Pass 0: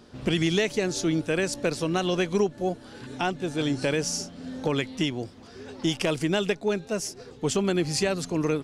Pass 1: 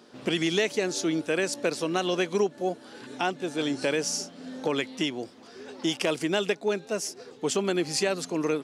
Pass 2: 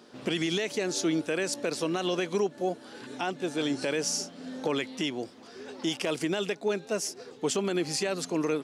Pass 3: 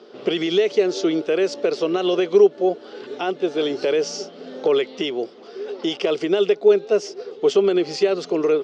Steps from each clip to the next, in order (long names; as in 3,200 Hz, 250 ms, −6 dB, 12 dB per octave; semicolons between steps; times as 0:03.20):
high-pass filter 250 Hz 12 dB per octave
brickwall limiter −18.5 dBFS, peak gain reduction 7.5 dB
loudspeaker in its box 260–4,600 Hz, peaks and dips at 270 Hz −8 dB, 410 Hz +9 dB, 940 Hz −7 dB, 1,700 Hz −8 dB, 2,400 Hz −5 dB, 4,000 Hz −5 dB; level +8.5 dB